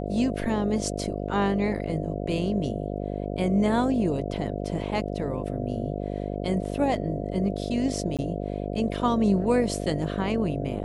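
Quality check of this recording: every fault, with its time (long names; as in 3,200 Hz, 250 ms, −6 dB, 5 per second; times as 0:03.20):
mains buzz 50 Hz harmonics 14 −31 dBFS
0:08.17–0:08.19: drop-out 17 ms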